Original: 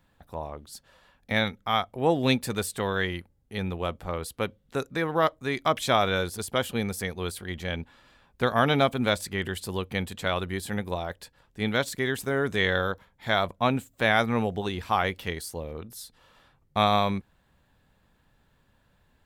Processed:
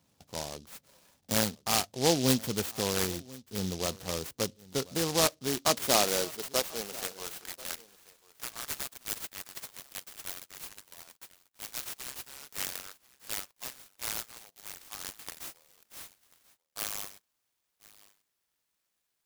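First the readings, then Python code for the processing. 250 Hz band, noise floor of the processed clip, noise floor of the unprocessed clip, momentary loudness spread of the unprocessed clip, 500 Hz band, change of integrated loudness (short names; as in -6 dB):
-7.0 dB, -81 dBFS, -67 dBFS, 14 LU, -7.5 dB, -4.5 dB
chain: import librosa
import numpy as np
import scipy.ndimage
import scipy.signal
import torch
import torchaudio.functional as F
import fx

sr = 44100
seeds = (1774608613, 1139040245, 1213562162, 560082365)

y = fx.filter_sweep_highpass(x, sr, from_hz=110.0, to_hz=3300.0, start_s=5.16, end_s=8.66, q=0.85)
y = y + 10.0 ** (-21.5 / 20.0) * np.pad(y, (int(1039 * sr / 1000.0), 0))[:len(y)]
y = fx.noise_mod_delay(y, sr, seeds[0], noise_hz=4600.0, depth_ms=0.17)
y = F.gain(torch.from_numpy(y), -2.5).numpy()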